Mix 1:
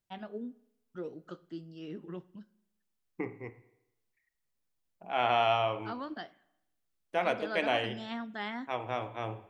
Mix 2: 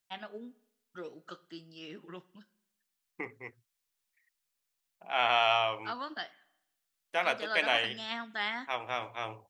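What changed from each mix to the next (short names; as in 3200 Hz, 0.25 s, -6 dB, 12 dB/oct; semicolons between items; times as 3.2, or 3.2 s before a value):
second voice: send off; master: add tilt shelf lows -8.5 dB, about 690 Hz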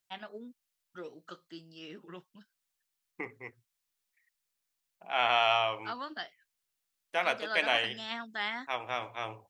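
reverb: off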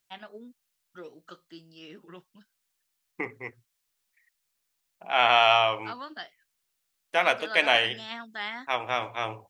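second voice +6.5 dB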